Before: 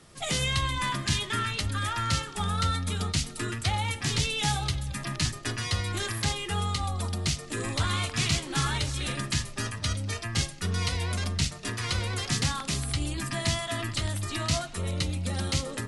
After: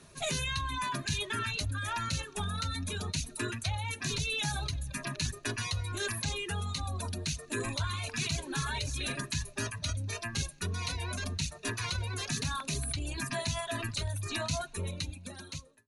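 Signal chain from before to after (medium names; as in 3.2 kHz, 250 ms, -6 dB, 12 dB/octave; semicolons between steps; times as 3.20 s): fade out at the end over 1.28 s; rippled EQ curve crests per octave 1.5, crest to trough 8 dB; in parallel at -2.5 dB: compressor with a negative ratio -30 dBFS, ratio -0.5; on the sum: reverb removal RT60 1.3 s; trim -7.5 dB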